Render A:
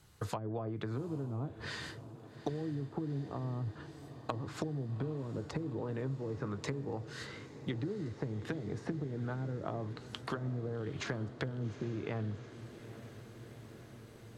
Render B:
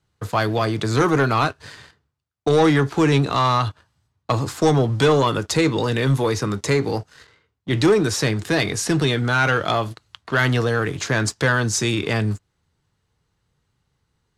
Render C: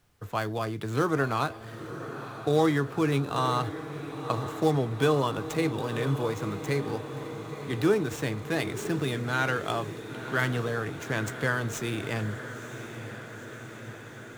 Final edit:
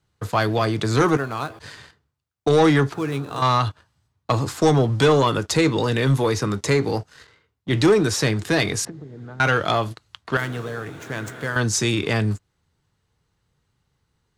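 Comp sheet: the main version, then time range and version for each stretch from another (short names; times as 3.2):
B
1.17–1.59 from C
2.94–3.42 from C
8.85–9.4 from A
10.37–11.56 from C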